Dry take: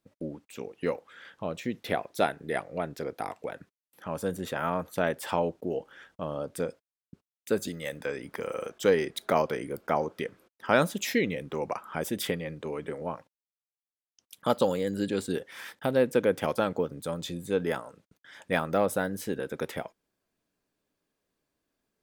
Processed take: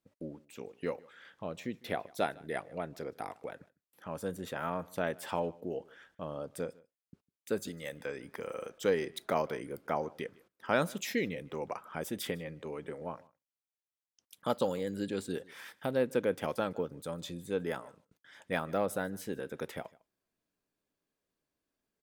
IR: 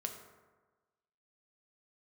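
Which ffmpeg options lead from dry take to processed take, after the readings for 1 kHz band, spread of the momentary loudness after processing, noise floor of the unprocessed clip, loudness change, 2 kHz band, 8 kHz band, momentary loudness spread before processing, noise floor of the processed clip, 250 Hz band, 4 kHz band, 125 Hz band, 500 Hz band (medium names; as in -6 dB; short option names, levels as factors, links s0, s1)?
-6.0 dB, 13 LU, under -85 dBFS, -6.0 dB, -6.0 dB, -6.0 dB, 13 LU, under -85 dBFS, -6.0 dB, -6.0 dB, -6.0 dB, -6.0 dB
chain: -af "aecho=1:1:153:0.0631,volume=0.501"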